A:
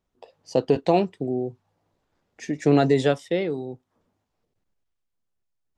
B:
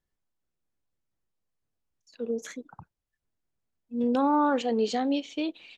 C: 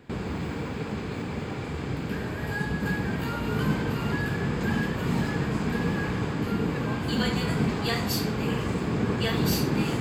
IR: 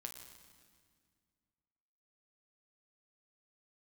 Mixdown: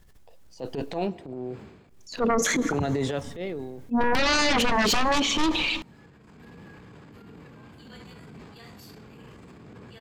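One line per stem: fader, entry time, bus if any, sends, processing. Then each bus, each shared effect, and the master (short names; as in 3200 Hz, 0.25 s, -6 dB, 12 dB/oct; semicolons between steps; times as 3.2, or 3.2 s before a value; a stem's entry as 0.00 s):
-8.5 dB, 0.05 s, send -14 dB, dry
-0.5 dB, 0.00 s, muted 1.07–1.89, send -8.5 dB, sine folder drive 17 dB, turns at -13 dBFS; low shelf 130 Hz +10 dB
-19.5 dB, 0.70 s, no send, auto duck -17 dB, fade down 0.40 s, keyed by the second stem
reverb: on, RT60 1.9 s, pre-delay 8 ms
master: transient shaper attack -11 dB, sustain +7 dB; limiter -16.5 dBFS, peak gain reduction 11 dB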